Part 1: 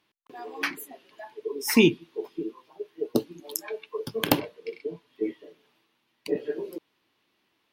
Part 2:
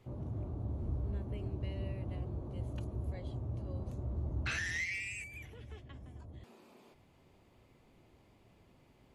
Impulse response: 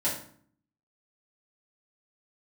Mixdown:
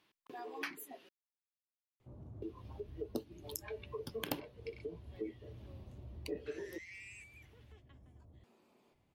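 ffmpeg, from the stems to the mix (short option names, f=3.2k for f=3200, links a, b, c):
-filter_complex "[0:a]volume=-2dB,asplit=3[a][b][c];[a]atrim=end=1.09,asetpts=PTS-STARTPTS,afade=t=out:st=1.086:d=0.004:c=hsin[d];[b]atrim=start=1.09:end=2.42,asetpts=PTS-STARTPTS,volume=0[e];[c]atrim=start=2.42,asetpts=PTS-STARTPTS,afade=t=in:d=0.004:c=hsin[f];[d][e][f]concat=n=3:v=0:a=1[g];[1:a]adelay=2000,volume=-10dB[h];[g][h]amix=inputs=2:normalize=0,acompressor=threshold=-47dB:ratio=2"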